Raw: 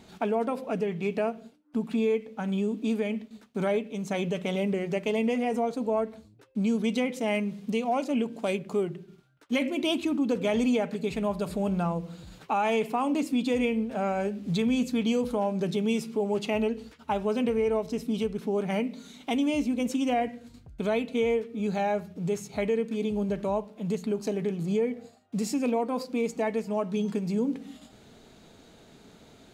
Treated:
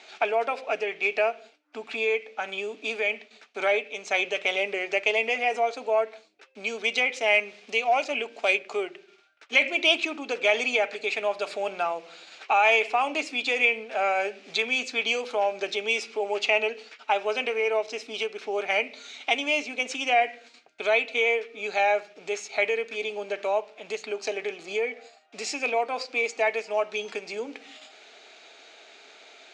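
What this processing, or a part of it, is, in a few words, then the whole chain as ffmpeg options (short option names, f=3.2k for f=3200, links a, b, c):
phone speaker on a table: -af "highpass=f=490:w=0.5412,highpass=f=490:w=1.3066,equalizer=f=510:t=q:w=4:g=-8,equalizer=f=1k:t=q:w=4:g=-8,equalizer=f=2.4k:t=q:w=4:g=8,lowpass=f=6.5k:w=0.5412,lowpass=f=6.5k:w=1.3066,volume=8dB"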